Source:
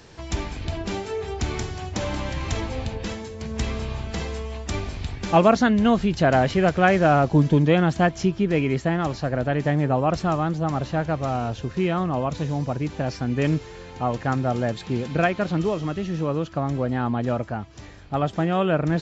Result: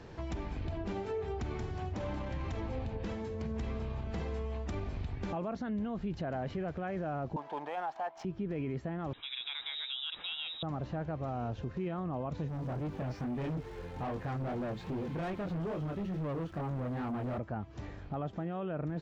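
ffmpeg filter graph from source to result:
ffmpeg -i in.wav -filter_complex "[0:a]asettb=1/sr,asplit=3[link_01][link_02][link_03];[link_01]atrim=end=7.364[link_04];[link_02]atrim=start=7.36:end=8.25,asetpts=PTS-STARTPTS,afade=type=in:duration=0.004:curve=qsin,afade=type=out:start_time=0.886:duration=0.004:curve=qsin,highpass=frequency=820:width_type=q:width=5.9,highshelf=frequency=4900:gain=10.5,adynamicsmooth=sensitivity=5:basefreq=2200[link_05];[link_03]atrim=start=8.246[link_06];[link_04][link_05]acrossfade=duration=0.004:curve1=hsin:curve2=qsin[link_07];[link_07][link_06]acrossfade=duration=0.004:curve1=qsin:curve2=hsin,asettb=1/sr,asplit=3[link_08][link_09][link_10];[link_08]atrim=end=9.134[link_11];[link_09]atrim=start=9.13:end=10.63,asetpts=PTS-STARTPTS,afade=type=in:duration=0.004:curve=qsin,afade=type=out:start_time=1.496:duration=0.004:curve=qsin,highpass=240,lowpass=frequency=3400:width_type=q:width=0.5098,lowpass=frequency=3400:width_type=q:width=0.6013,lowpass=frequency=3400:width_type=q:width=0.9,lowpass=frequency=3400:width_type=q:width=2.563,afreqshift=-4000,acompressor=threshold=-26dB:ratio=2:attack=3.2:release=140:knee=1:detection=peak[link_12];[link_10]atrim=start=10.626[link_13];[link_11][link_12]acrossfade=duration=0.004:curve1=hsin:curve2=qsin[link_14];[link_14][link_13]acrossfade=duration=0.004:curve1=qsin:curve2=hsin,asettb=1/sr,asplit=3[link_15][link_16][link_17];[link_15]atrim=end=12.484[link_18];[link_16]atrim=start=12.48:end=17.38,asetpts=PTS-STARTPTS,afade=type=in:duration=0.004:curve=qsin,afade=type=out:start_time=4.896:duration=0.004:curve=qsin,flanger=delay=19.5:depth=4.9:speed=2.4,acrusher=bits=9:dc=4:mix=0:aa=0.000001,volume=29.5dB,asoftclip=hard,volume=-29.5dB[link_19];[link_17]atrim=start=17.376[link_20];[link_18][link_19]acrossfade=duration=0.004:curve1=hsin:curve2=qsin[link_21];[link_21][link_20]acrossfade=duration=0.004:curve1=qsin:curve2=hsin,lowpass=frequency=1200:poles=1,acompressor=threshold=-36dB:ratio=2.5,alimiter=level_in=5dB:limit=-24dB:level=0:latency=1:release=12,volume=-5dB" out.wav

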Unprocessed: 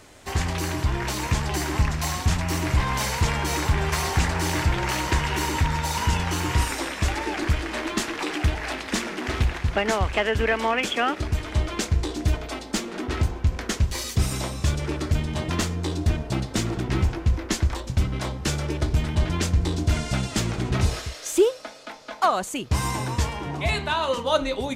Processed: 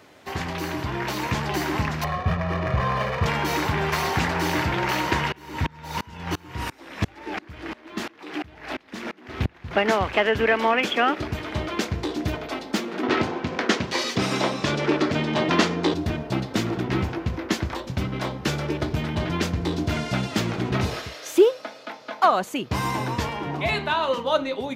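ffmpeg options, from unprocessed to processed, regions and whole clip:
ffmpeg -i in.wav -filter_complex "[0:a]asettb=1/sr,asplit=3[link_01][link_02][link_03];[link_01]atrim=end=2.044[link_04];[link_02]atrim=start=2.04:end=3.26,asetpts=PTS-STARTPTS,afade=type=in:duration=0.004:curve=qsin,afade=type=out:start_time=1.216:duration=0.004:curve=qsin,lowpass=frequency=2100:poles=1,adynamicsmooth=sensitivity=5:basefreq=750,aecho=1:1:1.7:0.76,atrim=end_sample=53802[link_05];[link_03]atrim=start=3.256[link_06];[link_04][link_05]acrossfade=duration=0.004:curve1=hsin:curve2=qsin[link_07];[link_07][link_06]acrossfade=duration=0.004:curve1=qsin:curve2=hsin,asettb=1/sr,asplit=3[link_08][link_09][link_10];[link_08]atrim=end=5.324[link_11];[link_09]atrim=start=5.32:end=9.71,asetpts=PTS-STARTPTS,afade=type=in:duration=0.004:curve=qsin,afade=type=out:start_time=4.386:duration=0.004:curve=qsin,lowshelf=frequency=160:gain=7.5,aeval=exprs='val(0)*pow(10,-30*if(lt(mod(-2.9*n/s,1),2*abs(-2.9)/1000),1-mod(-2.9*n/s,1)/(2*abs(-2.9)/1000),(mod(-2.9*n/s,1)-2*abs(-2.9)/1000)/(1-2*abs(-2.9)/1000))/20)':channel_layout=same[link_12];[link_10]atrim=start=9.706[link_13];[link_11][link_12]acrossfade=duration=0.004:curve1=hsin:curve2=qsin[link_14];[link_14][link_13]acrossfade=duration=0.004:curve1=qsin:curve2=hsin,asettb=1/sr,asplit=3[link_15][link_16][link_17];[link_15]atrim=end=13.034[link_18];[link_16]atrim=start=13.03:end=15.94,asetpts=PTS-STARTPTS,afade=type=in:duration=0.004:curve=qsin,afade=type=out:start_time=2.906:duration=0.004:curve=qsin,acontrast=74,highpass=200,lowpass=6600[link_19];[link_17]atrim=start=15.936[link_20];[link_18][link_19]acrossfade=duration=0.004:curve1=hsin:curve2=qsin[link_21];[link_21][link_20]acrossfade=duration=0.004:curve1=qsin:curve2=hsin,highpass=140,equalizer=frequency=8400:width=1:gain=-12.5,dynaudnorm=framelen=220:gausssize=9:maxgain=3dB" out.wav

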